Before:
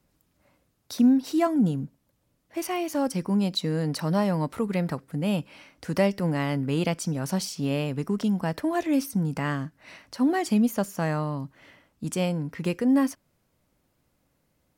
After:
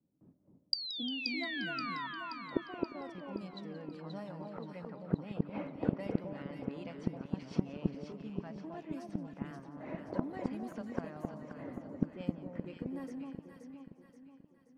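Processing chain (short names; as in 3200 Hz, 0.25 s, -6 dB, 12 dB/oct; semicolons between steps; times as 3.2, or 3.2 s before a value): bin magnitudes rounded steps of 15 dB; gate with hold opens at -51 dBFS; low-pass opened by the level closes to 340 Hz, open at -18.5 dBFS; HPF 180 Hz 12 dB/oct; high shelf 7600 Hz -6.5 dB; in parallel at +1 dB: compressor, threshold -31 dBFS, peak gain reduction 13.5 dB; on the sum: painted sound fall, 0.73–2.07, 940–4800 Hz -18 dBFS; flipped gate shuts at -26 dBFS, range -34 dB; on a send: echo with dull and thin repeats by turns 0.264 s, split 1100 Hz, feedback 67%, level -2 dB; on the sum: warbling echo 0.176 s, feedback 66%, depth 132 cents, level -16.5 dB; gain +11 dB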